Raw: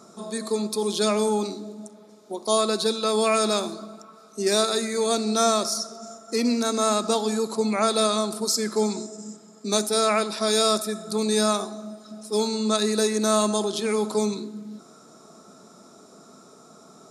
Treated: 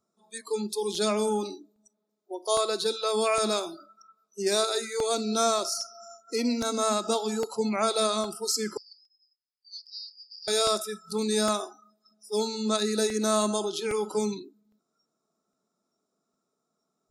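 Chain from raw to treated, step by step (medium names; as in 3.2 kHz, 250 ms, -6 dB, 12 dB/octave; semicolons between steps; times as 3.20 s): 8.77–10.48 s: Butterworth band-pass 4.7 kHz, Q 6.8; spectral noise reduction 27 dB; crackling interface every 0.81 s, samples 64, repeat, from 0.95 s; trim -3.5 dB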